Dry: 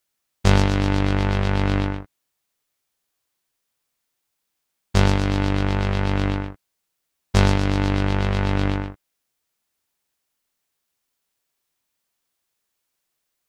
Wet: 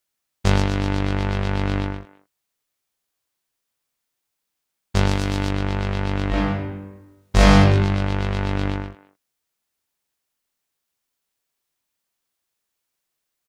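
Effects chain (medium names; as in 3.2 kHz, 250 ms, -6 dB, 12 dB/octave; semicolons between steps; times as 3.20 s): 5.11–5.51 s: treble shelf 5.8 kHz +11 dB; speakerphone echo 210 ms, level -18 dB; 6.28–7.59 s: reverb throw, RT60 1.1 s, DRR -8 dB; trim -2 dB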